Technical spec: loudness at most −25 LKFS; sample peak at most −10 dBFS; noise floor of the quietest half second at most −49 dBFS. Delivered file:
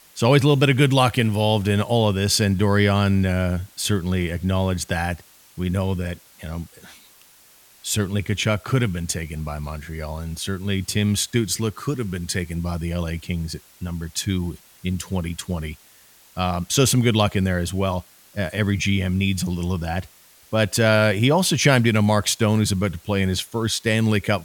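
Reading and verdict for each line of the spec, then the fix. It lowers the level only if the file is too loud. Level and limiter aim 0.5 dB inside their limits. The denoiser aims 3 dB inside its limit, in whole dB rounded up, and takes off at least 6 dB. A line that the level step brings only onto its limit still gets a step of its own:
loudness −21.5 LKFS: out of spec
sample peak −2.5 dBFS: out of spec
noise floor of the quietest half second −52 dBFS: in spec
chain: level −4 dB
brickwall limiter −10.5 dBFS

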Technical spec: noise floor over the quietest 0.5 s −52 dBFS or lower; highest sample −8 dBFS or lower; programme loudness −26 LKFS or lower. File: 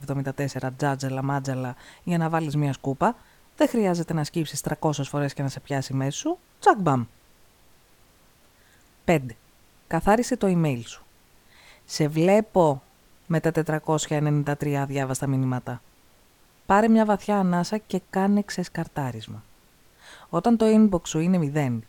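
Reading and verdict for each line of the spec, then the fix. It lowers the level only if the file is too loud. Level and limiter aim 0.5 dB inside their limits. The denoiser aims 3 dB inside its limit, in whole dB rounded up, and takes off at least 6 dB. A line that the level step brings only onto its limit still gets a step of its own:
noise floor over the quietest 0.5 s −58 dBFS: in spec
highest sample −5.5 dBFS: out of spec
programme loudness −24.5 LKFS: out of spec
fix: level −2 dB
brickwall limiter −8.5 dBFS

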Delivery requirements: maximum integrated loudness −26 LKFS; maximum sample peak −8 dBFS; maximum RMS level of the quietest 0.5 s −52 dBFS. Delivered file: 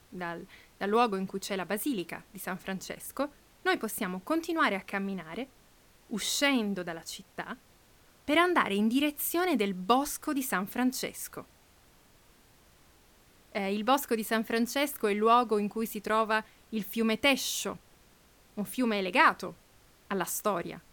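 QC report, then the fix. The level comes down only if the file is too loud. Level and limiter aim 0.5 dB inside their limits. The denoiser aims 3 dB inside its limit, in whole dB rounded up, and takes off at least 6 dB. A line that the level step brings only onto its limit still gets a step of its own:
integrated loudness −30.0 LKFS: in spec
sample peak −9.5 dBFS: in spec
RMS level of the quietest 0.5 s −61 dBFS: in spec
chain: no processing needed

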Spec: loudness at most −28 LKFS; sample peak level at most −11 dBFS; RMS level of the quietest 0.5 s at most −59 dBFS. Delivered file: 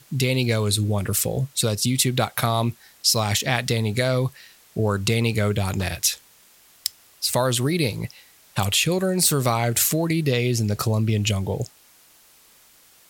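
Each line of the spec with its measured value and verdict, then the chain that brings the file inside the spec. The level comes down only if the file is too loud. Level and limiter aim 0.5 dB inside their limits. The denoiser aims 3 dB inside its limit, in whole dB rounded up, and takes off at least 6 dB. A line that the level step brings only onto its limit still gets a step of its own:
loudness −22.5 LKFS: out of spec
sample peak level −3.5 dBFS: out of spec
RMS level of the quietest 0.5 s −54 dBFS: out of spec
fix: level −6 dB
brickwall limiter −11.5 dBFS

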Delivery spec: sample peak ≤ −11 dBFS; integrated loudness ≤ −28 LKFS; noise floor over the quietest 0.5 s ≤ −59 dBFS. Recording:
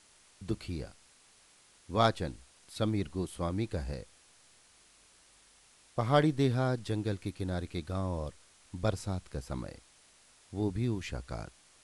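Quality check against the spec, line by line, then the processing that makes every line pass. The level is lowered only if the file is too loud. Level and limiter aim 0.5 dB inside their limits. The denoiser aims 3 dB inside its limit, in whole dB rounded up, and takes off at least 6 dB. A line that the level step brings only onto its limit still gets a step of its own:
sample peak −13.5 dBFS: in spec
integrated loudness −34.0 LKFS: in spec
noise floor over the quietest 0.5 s −62 dBFS: in spec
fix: no processing needed

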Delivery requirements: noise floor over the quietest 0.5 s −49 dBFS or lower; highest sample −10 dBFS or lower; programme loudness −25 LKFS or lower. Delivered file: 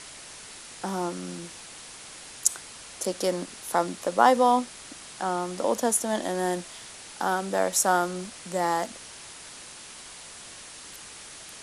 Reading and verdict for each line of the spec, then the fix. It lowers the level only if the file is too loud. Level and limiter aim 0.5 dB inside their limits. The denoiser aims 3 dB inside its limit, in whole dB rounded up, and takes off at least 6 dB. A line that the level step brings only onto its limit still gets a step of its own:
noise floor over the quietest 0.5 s −44 dBFS: out of spec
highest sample −4.0 dBFS: out of spec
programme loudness −26.5 LKFS: in spec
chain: broadband denoise 8 dB, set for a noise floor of −44 dBFS
brickwall limiter −10.5 dBFS

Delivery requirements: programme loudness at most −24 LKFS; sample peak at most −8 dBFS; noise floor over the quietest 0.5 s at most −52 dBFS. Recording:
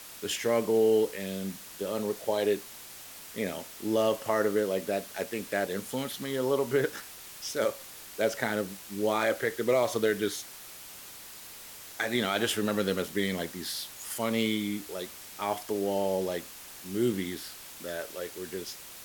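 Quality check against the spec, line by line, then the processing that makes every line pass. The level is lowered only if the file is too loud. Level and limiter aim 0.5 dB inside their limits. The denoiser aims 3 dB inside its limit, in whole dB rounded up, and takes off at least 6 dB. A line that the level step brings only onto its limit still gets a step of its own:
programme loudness −30.5 LKFS: in spec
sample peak −14.0 dBFS: in spec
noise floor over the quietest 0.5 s −46 dBFS: out of spec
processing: broadband denoise 9 dB, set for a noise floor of −46 dBFS

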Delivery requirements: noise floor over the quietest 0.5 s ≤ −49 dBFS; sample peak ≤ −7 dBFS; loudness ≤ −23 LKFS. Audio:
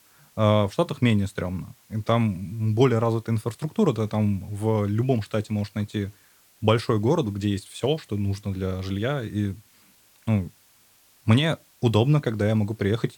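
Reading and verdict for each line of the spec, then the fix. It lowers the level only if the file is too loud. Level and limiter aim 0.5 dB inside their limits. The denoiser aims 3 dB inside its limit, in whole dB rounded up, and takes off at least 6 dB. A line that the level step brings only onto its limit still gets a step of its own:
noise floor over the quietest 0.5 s −58 dBFS: in spec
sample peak −4.5 dBFS: out of spec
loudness −25.0 LKFS: in spec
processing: brickwall limiter −7.5 dBFS

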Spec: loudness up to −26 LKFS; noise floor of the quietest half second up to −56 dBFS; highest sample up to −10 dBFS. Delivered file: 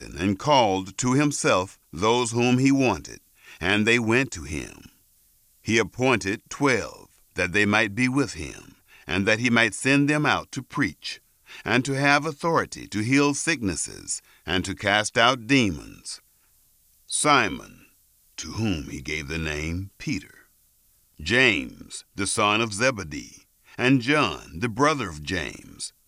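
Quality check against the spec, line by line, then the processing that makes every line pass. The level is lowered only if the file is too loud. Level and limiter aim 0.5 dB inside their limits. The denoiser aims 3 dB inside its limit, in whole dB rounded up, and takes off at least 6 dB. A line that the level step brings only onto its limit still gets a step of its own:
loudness −23.0 LKFS: out of spec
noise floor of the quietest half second −62 dBFS: in spec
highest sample −3.5 dBFS: out of spec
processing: level −3.5 dB
brickwall limiter −10.5 dBFS

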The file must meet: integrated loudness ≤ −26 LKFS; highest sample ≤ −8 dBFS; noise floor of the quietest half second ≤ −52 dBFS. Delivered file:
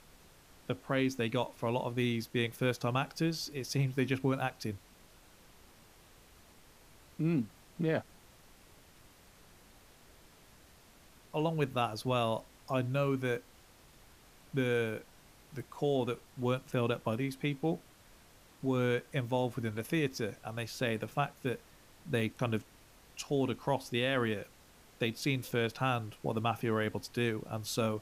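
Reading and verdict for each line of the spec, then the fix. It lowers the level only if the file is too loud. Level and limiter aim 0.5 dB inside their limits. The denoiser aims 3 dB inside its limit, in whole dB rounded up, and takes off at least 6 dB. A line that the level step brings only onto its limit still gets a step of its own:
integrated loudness −34.5 LKFS: in spec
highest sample −18.0 dBFS: in spec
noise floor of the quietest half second −60 dBFS: in spec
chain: no processing needed

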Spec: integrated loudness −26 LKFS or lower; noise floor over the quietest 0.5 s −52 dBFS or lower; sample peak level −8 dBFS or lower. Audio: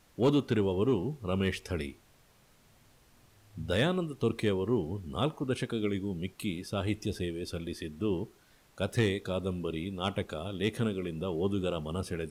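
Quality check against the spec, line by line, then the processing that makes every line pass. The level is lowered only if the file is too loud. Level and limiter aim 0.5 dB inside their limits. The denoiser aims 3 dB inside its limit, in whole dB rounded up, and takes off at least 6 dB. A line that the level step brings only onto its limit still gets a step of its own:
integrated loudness −32.5 LKFS: in spec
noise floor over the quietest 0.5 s −63 dBFS: in spec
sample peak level −18.5 dBFS: in spec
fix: no processing needed

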